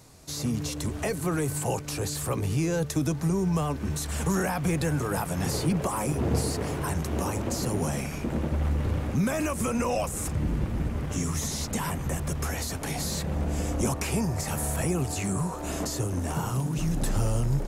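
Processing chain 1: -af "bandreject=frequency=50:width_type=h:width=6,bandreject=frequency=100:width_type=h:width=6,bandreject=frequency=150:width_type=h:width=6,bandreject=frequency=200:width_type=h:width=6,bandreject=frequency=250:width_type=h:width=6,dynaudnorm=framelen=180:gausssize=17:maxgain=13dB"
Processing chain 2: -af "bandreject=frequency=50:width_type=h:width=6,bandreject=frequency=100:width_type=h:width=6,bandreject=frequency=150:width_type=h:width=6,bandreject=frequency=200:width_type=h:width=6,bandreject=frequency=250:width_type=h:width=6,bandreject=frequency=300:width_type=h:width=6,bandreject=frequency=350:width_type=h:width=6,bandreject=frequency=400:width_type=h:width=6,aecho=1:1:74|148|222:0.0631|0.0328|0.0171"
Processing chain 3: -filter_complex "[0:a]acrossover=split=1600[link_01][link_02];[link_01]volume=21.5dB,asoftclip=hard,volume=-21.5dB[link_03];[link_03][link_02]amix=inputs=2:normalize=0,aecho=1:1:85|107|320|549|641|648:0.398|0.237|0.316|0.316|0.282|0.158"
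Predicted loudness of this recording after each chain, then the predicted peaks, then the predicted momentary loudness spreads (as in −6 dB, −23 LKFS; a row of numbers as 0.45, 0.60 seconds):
−18.0, −29.5, −27.5 LKFS; −3.0, −14.0, −14.0 dBFS; 8, 4, 3 LU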